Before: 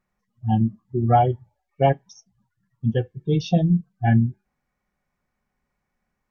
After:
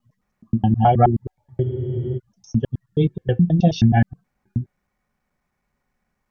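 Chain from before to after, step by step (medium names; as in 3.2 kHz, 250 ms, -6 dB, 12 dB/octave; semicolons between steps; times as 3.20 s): slices played last to first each 106 ms, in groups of 4; spectral freeze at 1.66 s, 0.52 s; trim +3 dB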